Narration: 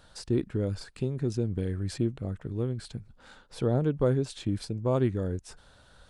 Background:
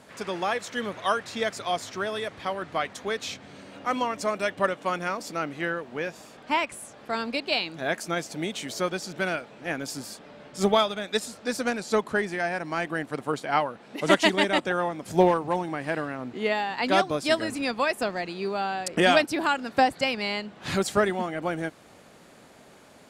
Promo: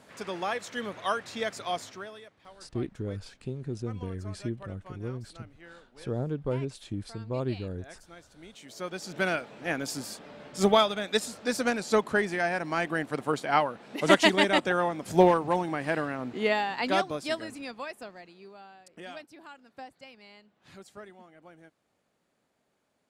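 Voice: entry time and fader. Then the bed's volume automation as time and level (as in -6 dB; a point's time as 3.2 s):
2.45 s, -5.5 dB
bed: 1.8 s -4 dB
2.35 s -21.5 dB
8.34 s -21.5 dB
9.21 s 0 dB
16.55 s 0 dB
18.87 s -23.5 dB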